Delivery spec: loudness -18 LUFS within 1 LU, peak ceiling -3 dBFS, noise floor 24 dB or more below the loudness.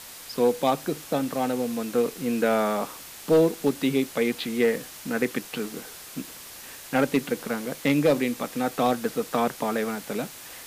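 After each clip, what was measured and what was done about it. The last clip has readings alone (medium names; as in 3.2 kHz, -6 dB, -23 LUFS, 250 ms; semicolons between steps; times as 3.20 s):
noise floor -43 dBFS; noise floor target -50 dBFS; loudness -26.0 LUFS; peak level -11.5 dBFS; loudness target -18.0 LUFS
-> noise print and reduce 7 dB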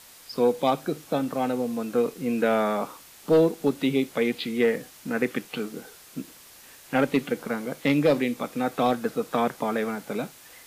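noise floor -50 dBFS; loudness -26.0 LUFS; peak level -11.5 dBFS; loudness target -18.0 LUFS
-> trim +8 dB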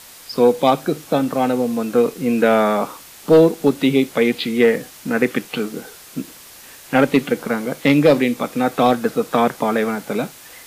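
loudness -18.0 LUFS; peak level -3.5 dBFS; noise floor -42 dBFS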